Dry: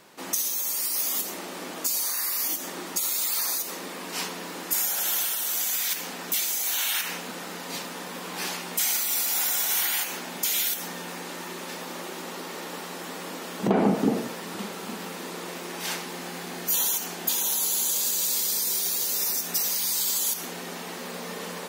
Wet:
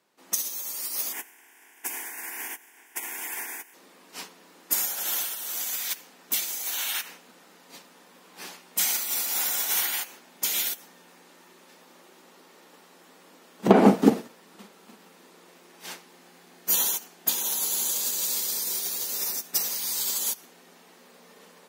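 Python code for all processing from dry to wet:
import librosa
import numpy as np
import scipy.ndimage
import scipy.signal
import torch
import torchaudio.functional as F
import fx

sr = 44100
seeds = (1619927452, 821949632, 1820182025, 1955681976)

y = fx.spec_clip(x, sr, under_db=22, at=(1.12, 3.73), fade=0.02)
y = fx.peak_eq(y, sr, hz=1500.0, db=7.5, octaves=1.0, at=(1.12, 3.73), fade=0.02)
y = fx.fixed_phaser(y, sr, hz=840.0, stages=8, at=(1.12, 3.73), fade=0.02)
y = scipy.signal.sosfilt(scipy.signal.butter(2, 140.0, 'highpass', fs=sr, output='sos'), y)
y = fx.hum_notches(y, sr, base_hz=60, count=3)
y = fx.upward_expand(y, sr, threshold_db=-36.0, expansion=2.5)
y = y * librosa.db_to_amplitude(8.0)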